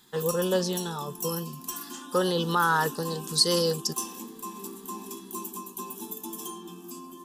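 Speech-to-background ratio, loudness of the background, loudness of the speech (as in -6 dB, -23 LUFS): 10.0 dB, -37.0 LUFS, -27.0 LUFS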